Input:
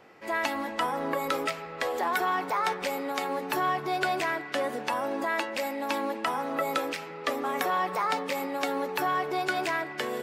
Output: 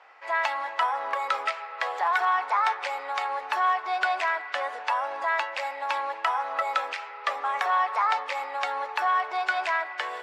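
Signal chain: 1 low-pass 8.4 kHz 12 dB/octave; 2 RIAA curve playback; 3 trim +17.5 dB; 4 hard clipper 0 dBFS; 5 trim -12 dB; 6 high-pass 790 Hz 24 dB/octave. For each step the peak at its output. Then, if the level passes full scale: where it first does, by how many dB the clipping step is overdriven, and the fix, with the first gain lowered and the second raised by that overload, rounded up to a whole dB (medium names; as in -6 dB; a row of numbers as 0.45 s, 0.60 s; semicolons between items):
-13.5 dBFS, -13.5 dBFS, +4.0 dBFS, 0.0 dBFS, -12.0 dBFS, -11.0 dBFS; step 3, 4.0 dB; step 3 +13.5 dB, step 5 -8 dB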